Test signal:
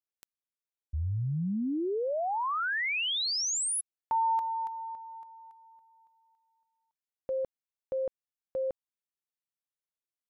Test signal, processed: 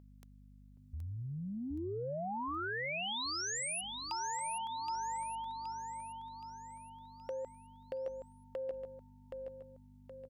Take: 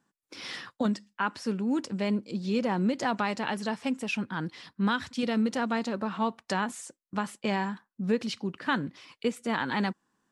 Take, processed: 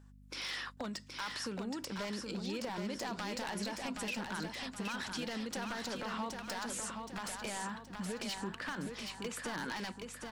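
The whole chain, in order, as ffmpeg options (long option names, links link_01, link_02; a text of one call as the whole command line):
ffmpeg -i in.wav -filter_complex "[0:a]aeval=exprs='val(0)+0.00355*(sin(2*PI*50*n/s)+sin(2*PI*2*50*n/s)/2+sin(2*PI*3*50*n/s)/3+sin(2*PI*4*50*n/s)/4+sin(2*PI*5*50*n/s)/5)':channel_layout=same,lowshelf=frequency=370:gain=-12,acompressor=threshold=-44dB:ratio=20:attack=46:release=29:knee=6:detection=rms,aeval=exprs='0.0178*(abs(mod(val(0)/0.0178+3,4)-2)-1)':channel_layout=same,asplit=2[link_01][link_02];[link_02]aecho=0:1:772|1544|2316|3088|3860|4632:0.562|0.259|0.119|0.0547|0.0252|0.0116[link_03];[link_01][link_03]amix=inputs=2:normalize=0,volume=3.5dB" out.wav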